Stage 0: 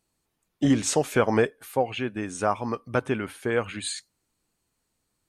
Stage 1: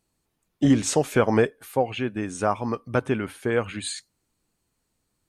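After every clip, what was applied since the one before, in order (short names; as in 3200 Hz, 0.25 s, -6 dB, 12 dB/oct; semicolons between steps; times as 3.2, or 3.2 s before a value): low shelf 430 Hz +3.5 dB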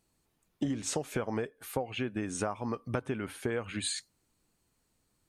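compressor 16:1, threshold -29 dBFS, peak gain reduction 16.5 dB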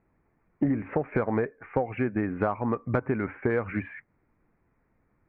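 steep low-pass 2300 Hz 72 dB/oct; in parallel at -9.5 dB: soft clip -27.5 dBFS, distortion -13 dB; on the sum: gain +5 dB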